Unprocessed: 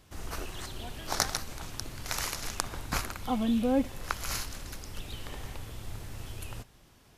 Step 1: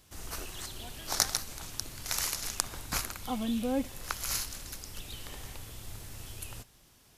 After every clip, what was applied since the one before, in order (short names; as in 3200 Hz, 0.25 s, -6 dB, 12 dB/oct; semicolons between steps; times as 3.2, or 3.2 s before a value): high shelf 3700 Hz +10 dB; gain -4.5 dB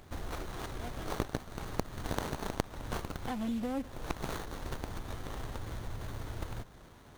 compressor 4:1, threshold -43 dBFS, peak gain reduction 19.5 dB; running maximum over 17 samples; gain +9 dB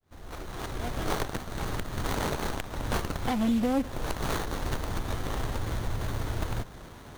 opening faded in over 1.08 s; wavefolder -28 dBFS; gain +9 dB